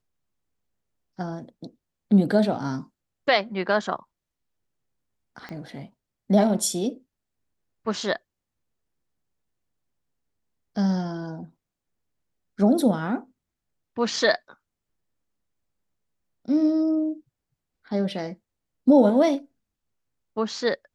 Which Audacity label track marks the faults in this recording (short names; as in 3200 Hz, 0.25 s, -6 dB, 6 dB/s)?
5.490000	5.490000	pop -24 dBFS